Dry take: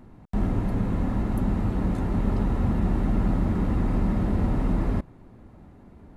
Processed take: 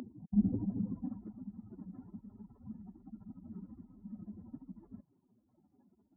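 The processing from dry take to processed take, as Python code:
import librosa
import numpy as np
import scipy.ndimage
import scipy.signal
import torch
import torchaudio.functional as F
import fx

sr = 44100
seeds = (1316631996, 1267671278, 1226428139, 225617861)

y = fx.spec_expand(x, sr, power=3.1)
y = fx.filter_sweep_highpass(y, sr, from_hz=420.0, to_hz=1500.0, start_s=0.3, end_s=1.39, q=0.98)
y = y * 10.0 ** (17.5 / 20.0)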